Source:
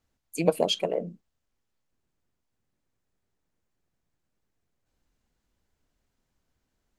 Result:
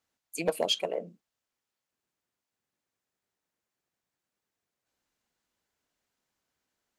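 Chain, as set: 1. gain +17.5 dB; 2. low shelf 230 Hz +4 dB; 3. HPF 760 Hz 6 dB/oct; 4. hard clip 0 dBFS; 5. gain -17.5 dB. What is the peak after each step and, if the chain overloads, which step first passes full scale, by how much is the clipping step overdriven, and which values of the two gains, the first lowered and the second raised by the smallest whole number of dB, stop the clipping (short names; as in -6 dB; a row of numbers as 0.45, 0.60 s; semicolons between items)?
+10.5, +11.5, +7.0, 0.0, -17.5 dBFS; step 1, 7.0 dB; step 1 +10.5 dB, step 5 -10.5 dB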